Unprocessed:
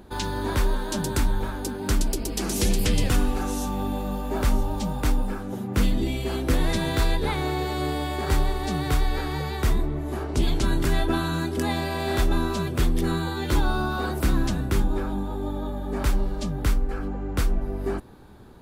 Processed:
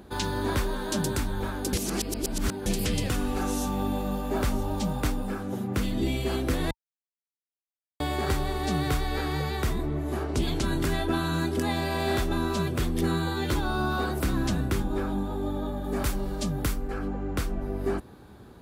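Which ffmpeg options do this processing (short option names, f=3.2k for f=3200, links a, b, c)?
-filter_complex "[0:a]asettb=1/sr,asplit=3[a][b][c];[a]atrim=end=15.844[d];[b]atrim=start=15.84:end=16.88,asetpts=PTS-STARTPTS,afade=t=in:d=0.004:c=qsin,afade=t=out:st=1.036:d=0.004:c=qsin,highshelf=f=6.7k:g=8[e];[c]atrim=start=16.876[f];[d][e]acrossfade=d=0.004:c1=hsin:c2=qsin[g];[g][f]acrossfade=d=0.004:c1=qsin:c2=hsin,asplit=5[h][i][j][k][l];[h]atrim=end=1.732[m];[i]atrim=start=1.728:end=2.662,asetpts=PTS-STARTPTS,areverse[n];[j]atrim=start=2.658:end=6.71,asetpts=PTS-STARTPTS,afade=t=out:st=4.048:d=0.004:c=hsin[o];[k]atrim=start=6.71:end=8,asetpts=PTS-STARTPTS,volume=0[p];[l]atrim=start=8,asetpts=PTS-STARTPTS,afade=t=in:d=0.004:c=hsin[q];[m][n]acrossfade=d=0.004:c1=hsin:c2=hsin[r];[o][p][q]concat=n=3:v=0:a=1[s];[r][s]acrossfade=d=0.004:c1=hsin:c2=hsin,highpass=50,bandreject=f=910:w=20,alimiter=limit=-16dB:level=0:latency=1:release=247"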